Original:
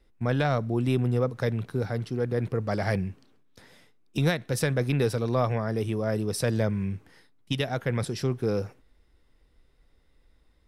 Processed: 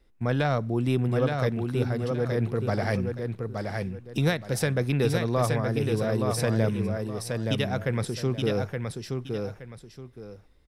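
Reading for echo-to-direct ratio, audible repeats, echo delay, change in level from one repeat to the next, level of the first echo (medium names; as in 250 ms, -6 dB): -4.0 dB, 2, 871 ms, -11.5 dB, -4.5 dB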